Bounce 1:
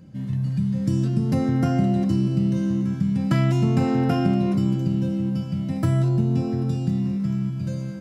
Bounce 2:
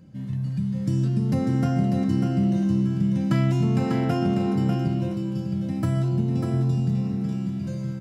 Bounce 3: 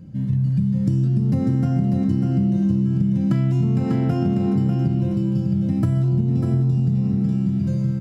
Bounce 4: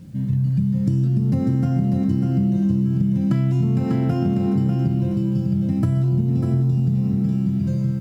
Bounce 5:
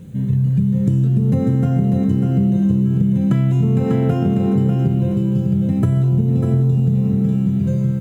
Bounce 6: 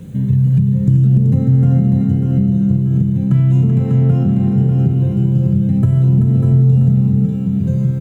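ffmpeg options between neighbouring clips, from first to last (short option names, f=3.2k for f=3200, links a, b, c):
-af "aecho=1:1:595:0.562,volume=-3dB"
-af "lowshelf=f=330:g=11.5,acompressor=threshold=-16dB:ratio=6"
-af "acrusher=bits=9:mix=0:aa=0.000001"
-af "superequalizer=6b=0.708:7b=2.51:14b=0.316,volume=3.5dB"
-filter_complex "[0:a]acrossover=split=200[a][b];[b]acompressor=threshold=-30dB:ratio=6[c];[a][c]amix=inputs=2:normalize=0,aecho=1:1:383:0.422,volume=4.5dB"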